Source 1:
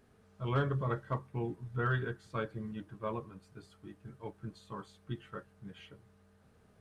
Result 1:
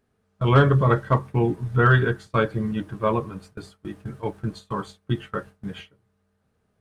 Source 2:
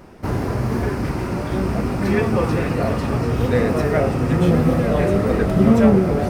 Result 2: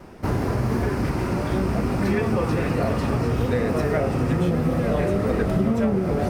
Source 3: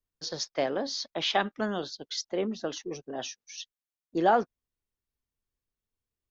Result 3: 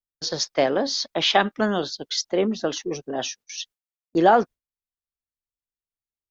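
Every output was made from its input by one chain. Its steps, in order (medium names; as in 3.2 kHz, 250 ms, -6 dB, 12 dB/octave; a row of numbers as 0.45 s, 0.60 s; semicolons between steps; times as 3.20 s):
gate with hold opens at -42 dBFS; compression, threshold -18 dBFS; normalise loudness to -23 LUFS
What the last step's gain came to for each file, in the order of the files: +15.0 dB, 0.0 dB, +8.0 dB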